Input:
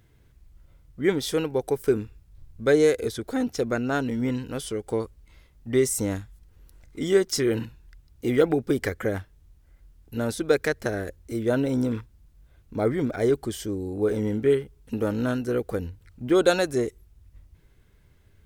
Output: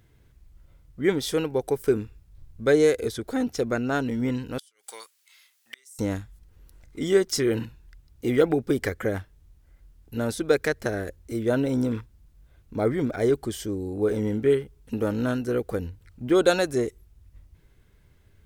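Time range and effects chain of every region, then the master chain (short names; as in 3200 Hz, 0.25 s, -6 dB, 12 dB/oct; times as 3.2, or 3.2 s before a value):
4.58–5.99 HPF 1500 Hz + high shelf 2400 Hz +10.5 dB + flipped gate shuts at -22 dBFS, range -30 dB
whole clip: dry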